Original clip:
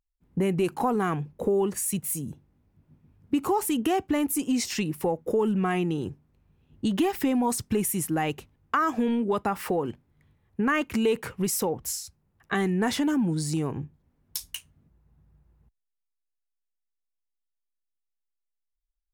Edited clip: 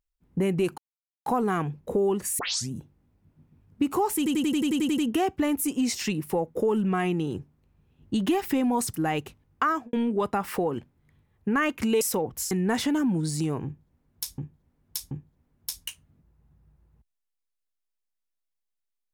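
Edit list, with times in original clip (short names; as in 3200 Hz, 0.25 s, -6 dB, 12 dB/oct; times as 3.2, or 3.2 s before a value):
0.78 insert silence 0.48 s
1.91 tape start 0.33 s
3.69 stutter 0.09 s, 10 plays
7.65–8.06 cut
8.8–9.05 studio fade out
11.13–11.49 cut
11.99–12.64 cut
13.78–14.51 loop, 3 plays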